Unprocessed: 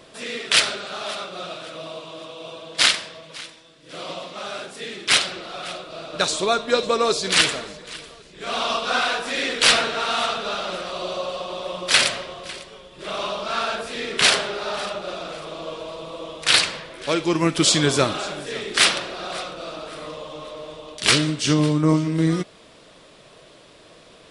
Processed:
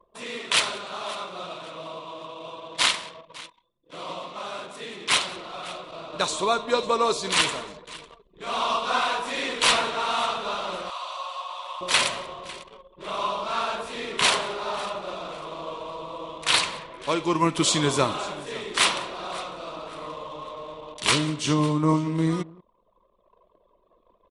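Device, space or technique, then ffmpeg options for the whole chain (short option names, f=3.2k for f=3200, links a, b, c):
ducked delay: -filter_complex "[0:a]equalizer=f=1k:t=o:w=0.33:g=11,equalizer=f=1.6k:t=o:w=0.33:g=-4,equalizer=f=5k:t=o:w=0.33:g=-5,asplit=3[a][b][c];[b]adelay=183,volume=-5dB[d];[c]apad=whole_len=1079779[e];[d][e]sidechaincompress=threshold=-33dB:ratio=12:attack=16:release=874[f];[a][f]amix=inputs=2:normalize=0,asettb=1/sr,asplit=3[g][h][i];[g]atrim=end=10.904[j];[h]atrim=start=10.9:end=11.81,asetpts=PTS-STARTPTS,afade=t=in:d=0.004:c=qsin,afade=t=out:st=0.906:d=0.004:c=qsin,highpass=f=800:w=0.5412,highpass=f=800:w=1.3066[k];[i]atrim=start=11.806[l];[j][k]acrossfade=d=0.004:c1=hsin:c2=qsin[m];[m][l]acrossfade=d=0.004:c1=qsin:c2=hsin,anlmdn=0.631,volume=-4dB"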